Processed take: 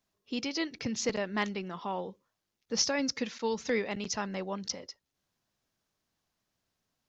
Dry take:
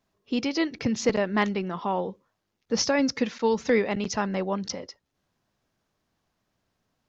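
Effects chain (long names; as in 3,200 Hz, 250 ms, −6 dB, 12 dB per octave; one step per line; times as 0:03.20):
high-shelf EQ 2,700 Hz +9 dB
level −8.5 dB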